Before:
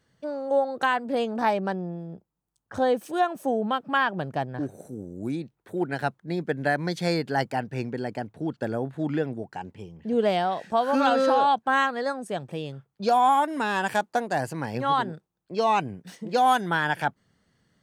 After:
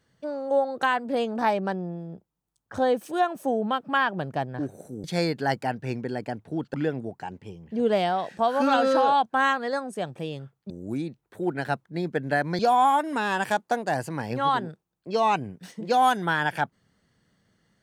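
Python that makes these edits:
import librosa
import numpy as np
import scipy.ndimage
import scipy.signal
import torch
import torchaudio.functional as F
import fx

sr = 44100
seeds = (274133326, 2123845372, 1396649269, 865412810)

y = fx.edit(x, sr, fx.move(start_s=5.04, length_s=1.89, to_s=13.03),
    fx.cut(start_s=8.63, length_s=0.44), tone=tone)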